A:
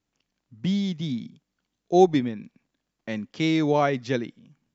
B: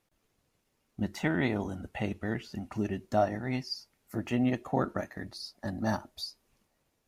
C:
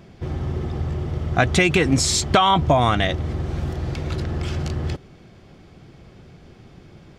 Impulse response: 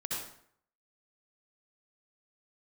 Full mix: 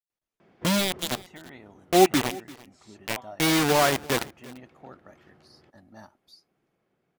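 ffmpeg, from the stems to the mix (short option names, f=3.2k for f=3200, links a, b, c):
-filter_complex "[0:a]acrusher=bits=3:mix=0:aa=0.000001,volume=1.5dB,asplit=3[a][b][c];[b]volume=-21.5dB[d];[1:a]adelay=100,volume=-15dB[e];[2:a]acrossover=split=160 2600:gain=0.126 1 0.224[f][g][h];[f][g][h]amix=inputs=3:normalize=0,acompressor=threshold=-29dB:ratio=5,adelay=400,volume=-7.5dB,asplit=2[i][j];[j]volume=-14.5dB[k];[c]apad=whole_len=334550[l];[i][l]sidechaingate=range=-33dB:threshold=-32dB:ratio=16:detection=peak[m];[d][k]amix=inputs=2:normalize=0,aecho=0:1:342:1[n];[a][e][m][n]amix=inputs=4:normalize=0,lowshelf=f=350:g=-6"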